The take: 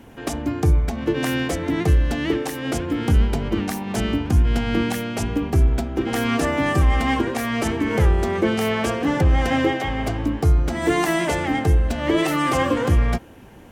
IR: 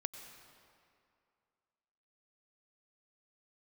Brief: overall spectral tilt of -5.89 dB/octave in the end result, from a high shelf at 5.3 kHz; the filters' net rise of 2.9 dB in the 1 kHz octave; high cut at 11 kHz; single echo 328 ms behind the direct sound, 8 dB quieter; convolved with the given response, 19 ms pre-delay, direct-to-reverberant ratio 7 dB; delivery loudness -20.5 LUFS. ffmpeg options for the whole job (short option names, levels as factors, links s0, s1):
-filter_complex "[0:a]lowpass=11000,equalizer=f=1000:t=o:g=4,highshelf=f=5300:g=-7,aecho=1:1:328:0.398,asplit=2[s0][s1];[1:a]atrim=start_sample=2205,adelay=19[s2];[s1][s2]afir=irnorm=-1:irlink=0,volume=0.501[s3];[s0][s3]amix=inputs=2:normalize=0,volume=0.891"